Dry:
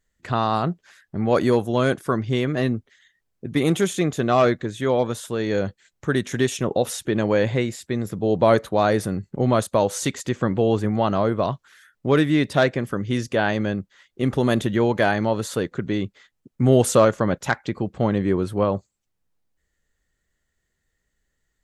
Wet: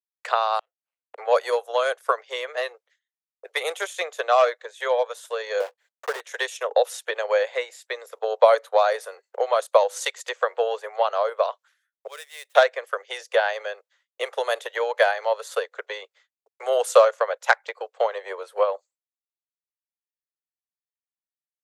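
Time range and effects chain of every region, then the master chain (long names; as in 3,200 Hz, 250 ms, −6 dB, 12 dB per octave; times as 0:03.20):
0:00.59–0:01.18: running median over 25 samples + parametric band 2,800 Hz +11.5 dB 1.2 octaves + gate with flip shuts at −22 dBFS, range −38 dB
0:05.60–0:06.21: one scale factor per block 3 bits + spectral tilt −3.5 dB per octave + downward compressor 2 to 1, threshold −16 dBFS
0:12.07–0:12.55: running median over 9 samples + first-order pre-emphasis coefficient 0.9
whole clip: downward expander −40 dBFS; transient designer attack +8 dB, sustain −6 dB; Butterworth high-pass 470 Hz 72 dB per octave; level −1.5 dB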